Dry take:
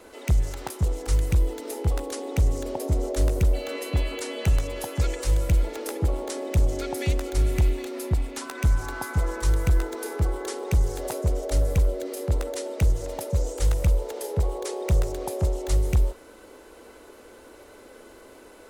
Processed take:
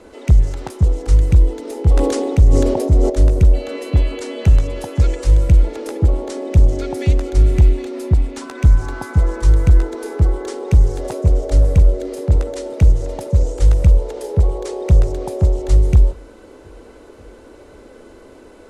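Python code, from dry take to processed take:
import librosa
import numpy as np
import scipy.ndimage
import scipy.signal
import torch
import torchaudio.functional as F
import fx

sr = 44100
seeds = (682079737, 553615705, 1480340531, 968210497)

y = fx.sustainer(x, sr, db_per_s=23.0, at=(1.74, 3.1))
y = fx.echo_throw(y, sr, start_s=10.5, length_s=0.93, ms=540, feedback_pct=80, wet_db=-16.0)
y = scipy.signal.sosfilt(scipy.signal.butter(2, 8700.0, 'lowpass', fs=sr, output='sos'), y)
y = fx.low_shelf(y, sr, hz=480.0, db=9.5)
y = y * librosa.db_to_amplitude(1.0)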